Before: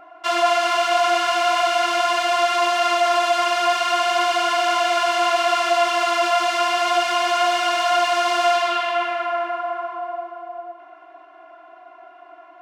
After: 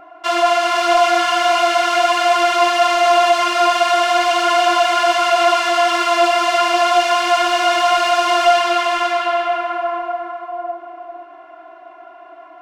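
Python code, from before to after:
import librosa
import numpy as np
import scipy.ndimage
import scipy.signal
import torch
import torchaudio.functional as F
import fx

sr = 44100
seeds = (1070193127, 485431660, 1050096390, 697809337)

y = fx.low_shelf(x, sr, hz=480.0, db=5.0)
y = y + 10.0 ** (-4.0 / 20.0) * np.pad(y, (int(509 * sr / 1000.0), 0))[:len(y)]
y = F.gain(torch.from_numpy(y), 2.0).numpy()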